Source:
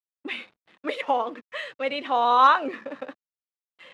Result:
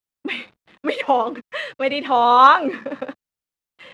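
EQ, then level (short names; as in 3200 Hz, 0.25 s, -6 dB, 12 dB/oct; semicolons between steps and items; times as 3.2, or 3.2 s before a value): low shelf 180 Hz +10.5 dB; +5.5 dB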